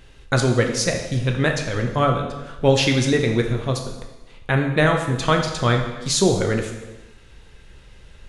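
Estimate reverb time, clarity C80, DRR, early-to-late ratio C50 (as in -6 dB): 1.1 s, 8.0 dB, 3.0 dB, 6.0 dB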